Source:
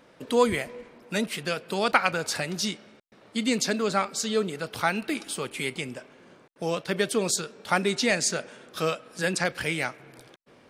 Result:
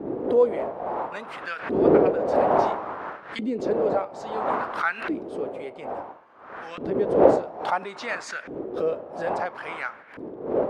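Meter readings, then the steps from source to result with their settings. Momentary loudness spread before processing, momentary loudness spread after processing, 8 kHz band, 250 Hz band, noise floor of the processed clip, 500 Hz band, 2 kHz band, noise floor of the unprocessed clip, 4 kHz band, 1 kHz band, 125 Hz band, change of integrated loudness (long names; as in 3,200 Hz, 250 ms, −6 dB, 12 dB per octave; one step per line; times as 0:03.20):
11 LU, 16 LU, below −15 dB, +1.5 dB, −45 dBFS, +6.0 dB, −3.5 dB, −56 dBFS, −13.5 dB, +4.0 dB, −3.0 dB, +2.0 dB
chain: wind on the microphone 570 Hz −24 dBFS
auto-filter band-pass saw up 0.59 Hz 320–1,800 Hz
background raised ahead of every attack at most 100 dB per second
level +3.5 dB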